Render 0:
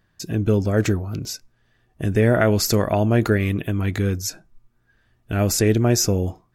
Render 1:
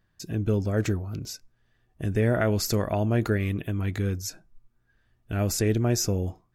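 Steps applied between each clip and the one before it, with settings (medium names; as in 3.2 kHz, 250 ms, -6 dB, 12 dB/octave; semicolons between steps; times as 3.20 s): bass shelf 84 Hz +5 dB; trim -7 dB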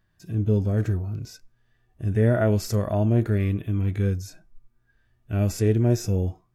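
harmonic-percussive split percussive -18 dB; trim +4.5 dB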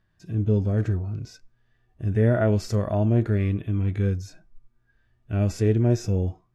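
distance through air 59 m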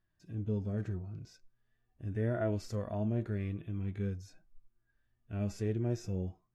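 flange 0.42 Hz, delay 2.8 ms, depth 3.3 ms, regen +68%; trim -7.5 dB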